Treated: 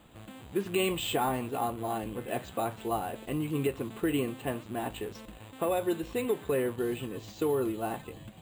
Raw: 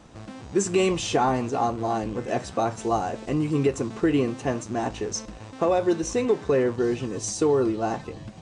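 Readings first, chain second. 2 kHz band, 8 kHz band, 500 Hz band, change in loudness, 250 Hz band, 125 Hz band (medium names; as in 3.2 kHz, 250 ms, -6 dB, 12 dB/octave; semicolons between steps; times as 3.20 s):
-4.5 dB, -11.0 dB, -7.5 dB, -7.0 dB, -7.5 dB, -7.5 dB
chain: four-pole ladder low-pass 3.9 kHz, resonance 50%; careless resampling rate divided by 4×, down filtered, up hold; trim +2 dB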